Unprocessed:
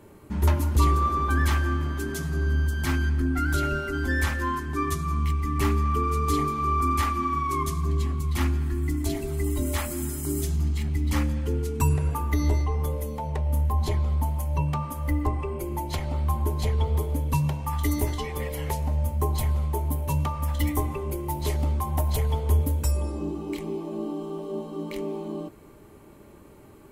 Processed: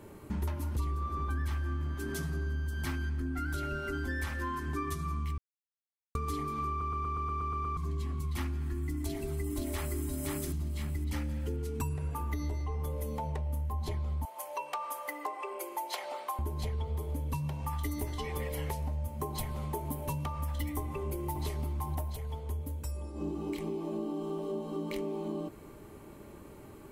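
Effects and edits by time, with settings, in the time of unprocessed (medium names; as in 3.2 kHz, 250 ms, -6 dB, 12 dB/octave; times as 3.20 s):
0.79–1.95 s: bass shelf 170 Hz +7 dB
5.38–6.15 s: mute
6.69 s: stutter in place 0.12 s, 9 plays
8.98–10.00 s: echo throw 520 ms, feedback 30%, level -2 dB
11.09–11.54 s: band-stop 1.1 kHz, Q 7.4
14.25–16.39 s: high-pass 500 Hz 24 dB/octave
19.07–20.25 s: peaking EQ 75 Hz -11.5 dB 0.35 oct
20.83–21.42 s: echo throw 520 ms, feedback 10%, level -4.5 dB
22.02–23.30 s: dip -12 dB, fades 0.16 s
whole clip: dynamic bell 6.9 kHz, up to -4 dB, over -57 dBFS, Q 6.3; compression, threshold -32 dBFS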